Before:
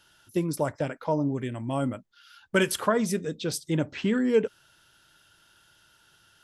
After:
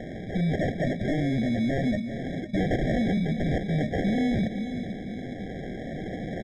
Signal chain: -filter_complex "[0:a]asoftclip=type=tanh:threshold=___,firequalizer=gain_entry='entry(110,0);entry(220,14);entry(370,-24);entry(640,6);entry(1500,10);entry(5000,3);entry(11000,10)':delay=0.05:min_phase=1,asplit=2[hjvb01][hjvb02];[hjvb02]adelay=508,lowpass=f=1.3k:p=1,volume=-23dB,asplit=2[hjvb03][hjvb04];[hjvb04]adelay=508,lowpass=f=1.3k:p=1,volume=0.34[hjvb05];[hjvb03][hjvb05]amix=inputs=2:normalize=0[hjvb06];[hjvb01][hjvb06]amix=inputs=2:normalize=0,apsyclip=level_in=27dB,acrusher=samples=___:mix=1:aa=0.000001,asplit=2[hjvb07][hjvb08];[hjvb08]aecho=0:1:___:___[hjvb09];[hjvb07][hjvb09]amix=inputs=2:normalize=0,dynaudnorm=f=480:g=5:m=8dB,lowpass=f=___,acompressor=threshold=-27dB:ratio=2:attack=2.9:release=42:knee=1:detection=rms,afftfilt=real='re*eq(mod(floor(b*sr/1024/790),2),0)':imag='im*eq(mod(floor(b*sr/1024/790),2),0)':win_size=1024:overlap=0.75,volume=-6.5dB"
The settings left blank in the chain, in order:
-25.5dB, 36, 398, 0.141, 3.6k